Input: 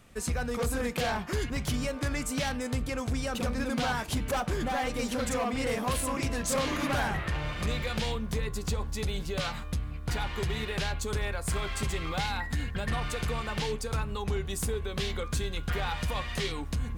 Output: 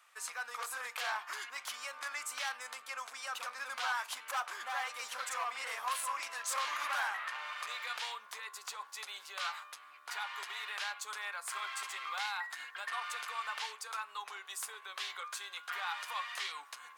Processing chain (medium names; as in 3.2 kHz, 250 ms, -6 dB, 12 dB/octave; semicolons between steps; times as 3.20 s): ladder high-pass 900 Hz, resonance 40%; trim +3 dB